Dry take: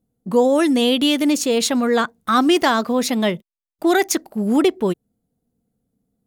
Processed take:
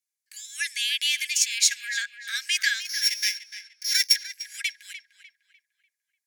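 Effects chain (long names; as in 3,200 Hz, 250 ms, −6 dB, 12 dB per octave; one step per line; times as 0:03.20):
0:02.81–0:04.16: samples sorted by size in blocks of 8 samples
Chebyshev high-pass with heavy ripple 1,600 Hz, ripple 9 dB
on a send: tape delay 298 ms, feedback 41%, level −10.5 dB, low-pass 3,400 Hz
on the sum: level +5.5 dB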